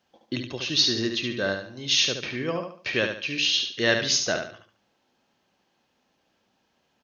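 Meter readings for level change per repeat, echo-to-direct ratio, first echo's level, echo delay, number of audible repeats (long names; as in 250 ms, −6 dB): −9.5 dB, −5.5 dB, −6.0 dB, 72 ms, 4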